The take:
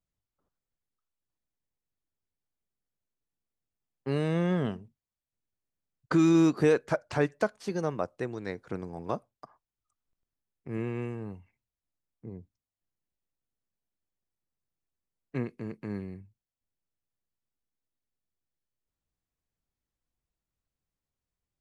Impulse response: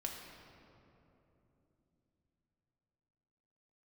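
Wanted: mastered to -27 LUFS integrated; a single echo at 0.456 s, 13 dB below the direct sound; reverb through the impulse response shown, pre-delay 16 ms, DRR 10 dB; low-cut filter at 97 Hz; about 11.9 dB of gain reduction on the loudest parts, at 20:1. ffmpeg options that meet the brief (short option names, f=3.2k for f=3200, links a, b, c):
-filter_complex "[0:a]highpass=97,acompressor=threshold=-30dB:ratio=20,aecho=1:1:456:0.224,asplit=2[a][b];[1:a]atrim=start_sample=2205,adelay=16[c];[b][c]afir=irnorm=-1:irlink=0,volume=-9.5dB[d];[a][d]amix=inputs=2:normalize=0,volume=11dB"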